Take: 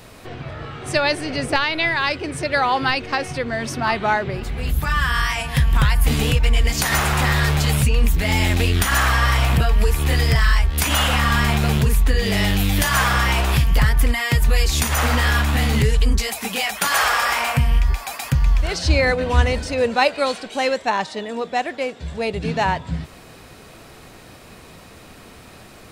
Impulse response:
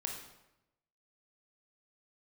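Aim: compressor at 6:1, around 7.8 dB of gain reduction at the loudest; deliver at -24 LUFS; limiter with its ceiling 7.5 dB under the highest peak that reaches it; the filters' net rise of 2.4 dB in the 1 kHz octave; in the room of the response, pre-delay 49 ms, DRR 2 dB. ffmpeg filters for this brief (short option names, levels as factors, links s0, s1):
-filter_complex "[0:a]equalizer=f=1000:t=o:g=3,acompressor=threshold=0.1:ratio=6,alimiter=limit=0.158:level=0:latency=1,asplit=2[s0][s1];[1:a]atrim=start_sample=2205,adelay=49[s2];[s1][s2]afir=irnorm=-1:irlink=0,volume=0.75[s3];[s0][s3]amix=inputs=2:normalize=0"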